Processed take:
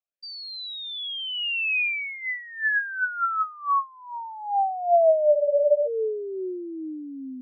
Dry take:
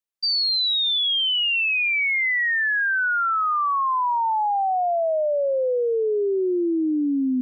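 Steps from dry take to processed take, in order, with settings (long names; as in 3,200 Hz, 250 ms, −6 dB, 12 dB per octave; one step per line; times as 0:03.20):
frozen spectrum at 0:05.35, 0.52 s
formant filter swept between two vowels a-e 2.4 Hz
level +7 dB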